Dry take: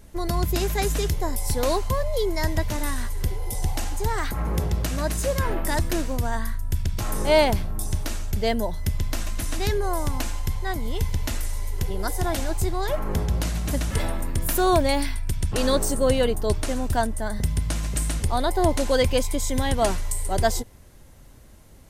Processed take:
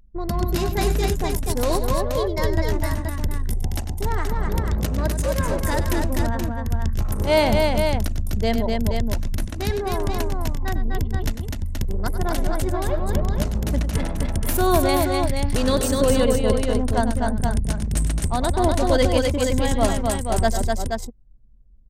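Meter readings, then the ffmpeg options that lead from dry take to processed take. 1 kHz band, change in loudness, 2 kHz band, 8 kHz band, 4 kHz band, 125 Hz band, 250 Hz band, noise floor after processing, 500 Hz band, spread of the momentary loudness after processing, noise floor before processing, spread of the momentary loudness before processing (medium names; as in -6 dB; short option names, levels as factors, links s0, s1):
+2.0 dB, +2.5 dB, +1.5 dB, -0.5 dB, +1.0 dB, +3.0 dB, +4.5 dB, -31 dBFS, +2.5 dB, 8 LU, -47 dBFS, 8 LU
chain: -filter_complex "[0:a]anlmdn=100,equalizer=f=220:w=3.4:g=5.5,asplit=2[s0][s1];[s1]aecho=0:1:98|251|476:0.282|0.668|0.531[s2];[s0][s2]amix=inputs=2:normalize=0"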